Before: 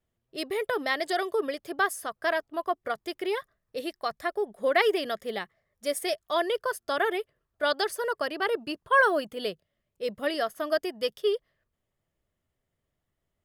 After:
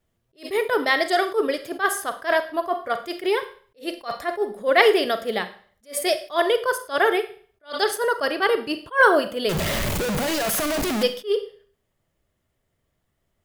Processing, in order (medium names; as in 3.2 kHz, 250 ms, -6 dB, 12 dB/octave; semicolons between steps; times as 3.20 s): 9.49–11.03 s: one-bit comparator; Schroeder reverb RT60 0.46 s, combs from 33 ms, DRR 10 dB; attacks held to a fixed rise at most 270 dB/s; trim +7.5 dB